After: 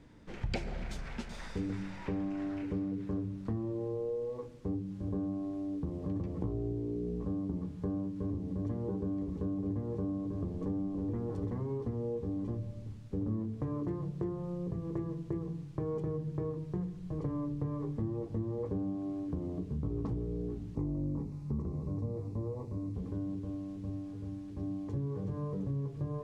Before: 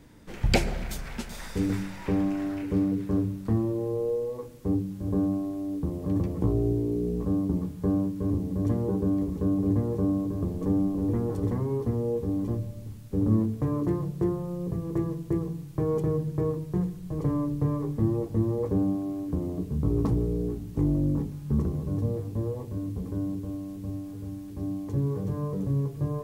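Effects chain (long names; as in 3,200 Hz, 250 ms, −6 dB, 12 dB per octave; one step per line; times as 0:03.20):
0:20.75–0:22.94: thirty-one-band graphic EQ 1,000 Hz +4 dB, 1,600 Hz −10 dB, 3,150 Hz −12 dB
downward compressor 3 to 1, threshold −29 dBFS, peak gain reduction 9.5 dB
high-frequency loss of the air 81 metres
level −4 dB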